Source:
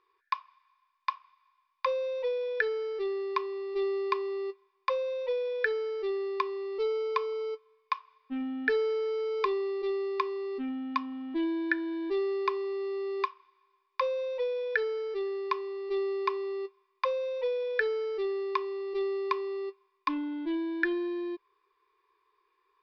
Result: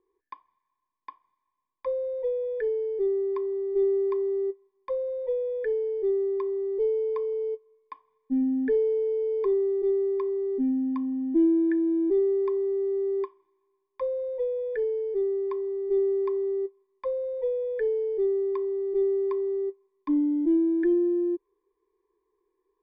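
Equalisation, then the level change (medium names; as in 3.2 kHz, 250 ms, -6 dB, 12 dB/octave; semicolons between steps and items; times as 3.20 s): boxcar filter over 33 samples; bass shelf 170 Hz +8.5 dB; peaking EQ 310 Hz +8.5 dB 1.2 oct; 0.0 dB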